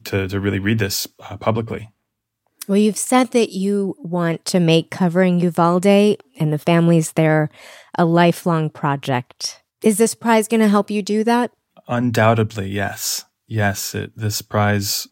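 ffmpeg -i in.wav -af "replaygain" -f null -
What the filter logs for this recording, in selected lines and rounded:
track_gain = -2.2 dB
track_peak = 0.586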